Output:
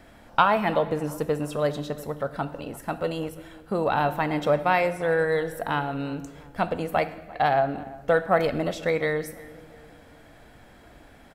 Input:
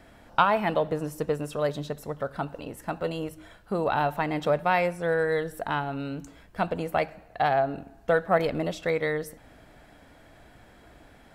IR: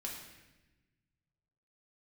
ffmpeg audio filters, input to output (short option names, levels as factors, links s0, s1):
-filter_complex "[0:a]asplit=2[s0][s1];[s1]adelay=345,lowpass=f=1600:p=1,volume=0.112,asplit=2[s2][s3];[s3]adelay=345,lowpass=f=1600:p=1,volume=0.48,asplit=2[s4][s5];[s5]adelay=345,lowpass=f=1600:p=1,volume=0.48,asplit=2[s6][s7];[s7]adelay=345,lowpass=f=1600:p=1,volume=0.48[s8];[s0][s2][s4][s6][s8]amix=inputs=5:normalize=0,asplit=2[s9][s10];[1:a]atrim=start_sample=2205,highshelf=f=11000:g=9[s11];[s10][s11]afir=irnorm=-1:irlink=0,volume=0.398[s12];[s9][s12]amix=inputs=2:normalize=0"